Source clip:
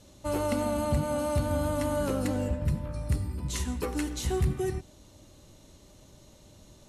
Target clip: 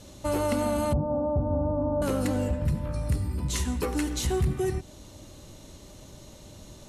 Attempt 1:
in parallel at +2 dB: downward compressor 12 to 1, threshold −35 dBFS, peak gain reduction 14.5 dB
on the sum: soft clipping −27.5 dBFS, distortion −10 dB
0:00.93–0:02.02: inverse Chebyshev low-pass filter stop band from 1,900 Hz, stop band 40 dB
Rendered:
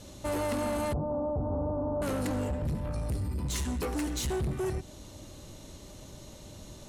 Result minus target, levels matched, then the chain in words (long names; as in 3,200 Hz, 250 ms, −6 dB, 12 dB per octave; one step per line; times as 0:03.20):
soft clipping: distortion +15 dB
in parallel at +2 dB: downward compressor 12 to 1, threshold −35 dBFS, peak gain reduction 14.5 dB
on the sum: soft clipping −15.5 dBFS, distortion −24 dB
0:00.93–0:02.02: inverse Chebyshev low-pass filter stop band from 1,900 Hz, stop band 40 dB